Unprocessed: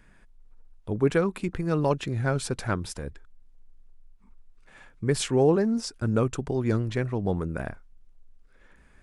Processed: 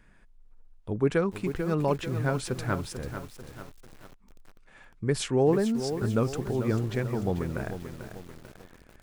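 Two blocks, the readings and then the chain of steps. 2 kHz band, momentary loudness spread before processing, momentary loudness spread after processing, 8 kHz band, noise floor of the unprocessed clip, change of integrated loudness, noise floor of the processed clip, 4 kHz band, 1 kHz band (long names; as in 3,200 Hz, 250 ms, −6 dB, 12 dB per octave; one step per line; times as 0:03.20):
−1.5 dB, 13 LU, 19 LU, −3.0 dB, −57 dBFS, −1.5 dB, −57 dBFS, −2.0 dB, −1.5 dB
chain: high-shelf EQ 6,200 Hz −3 dB
feedback echo at a low word length 442 ms, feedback 55%, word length 7 bits, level −9 dB
level −2 dB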